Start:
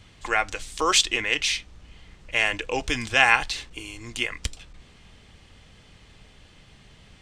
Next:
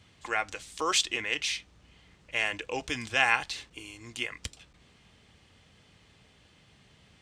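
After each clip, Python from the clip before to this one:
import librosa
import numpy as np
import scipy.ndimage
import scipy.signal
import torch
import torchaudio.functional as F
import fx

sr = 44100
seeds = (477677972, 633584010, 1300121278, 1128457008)

y = scipy.signal.sosfilt(scipy.signal.butter(2, 76.0, 'highpass', fs=sr, output='sos'), x)
y = y * librosa.db_to_amplitude(-6.5)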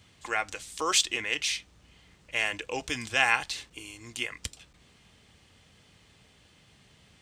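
y = fx.high_shelf(x, sr, hz=7800.0, db=8.5)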